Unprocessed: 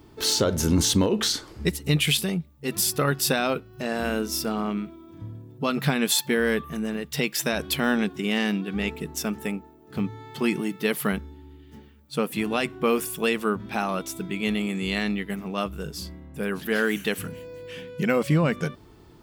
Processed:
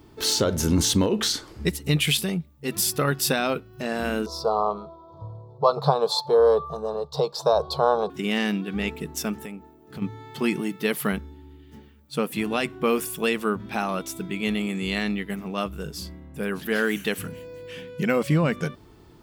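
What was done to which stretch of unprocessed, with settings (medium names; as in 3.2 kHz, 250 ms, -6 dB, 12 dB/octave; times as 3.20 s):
4.26–8.10 s: FFT filter 150 Hz 0 dB, 260 Hz -21 dB, 460 Hz +9 dB, 1.1 kHz +12 dB, 1.9 kHz -28 dB, 2.8 kHz -21 dB, 4.1 kHz +4 dB, 6.2 kHz -10 dB, 13 kHz -21 dB
9.44–10.02 s: compression 3:1, threshold -35 dBFS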